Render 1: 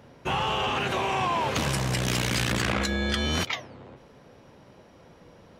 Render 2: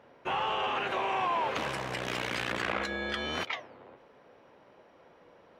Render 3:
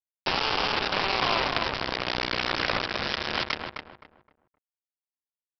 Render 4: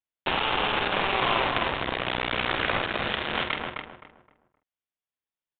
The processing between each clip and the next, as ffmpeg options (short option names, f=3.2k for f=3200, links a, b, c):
-af "bass=f=250:g=-15,treble=f=4k:g=-14,volume=-2.5dB"
-filter_complex "[0:a]acompressor=threshold=-35dB:ratio=2,aresample=11025,acrusher=bits=4:mix=0:aa=0.000001,aresample=44100,asplit=2[a][b];[b]adelay=260,lowpass=f=1.6k:p=1,volume=-4dB,asplit=2[c][d];[d]adelay=260,lowpass=f=1.6k:p=1,volume=0.3,asplit=2[e][f];[f]adelay=260,lowpass=f=1.6k:p=1,volume=0.3,asplit=2[g][h];[h]adelay=260,lowpass=f=1.6k:p=1,volume=0.3[i];[a][c][e][g][i]amix=inputs=5:normalize=0,volume=8.5dB"
-filter_complex "[0:a]asoftclip=type=tanh:threshold=-14.5dB,asplit=2[a][b];[b]adelay=47,volume=-7.5dB[c];[a][c]amix=inputs=2:normalize=0,aresample=8000,aresample=44100,volume=2.5dB"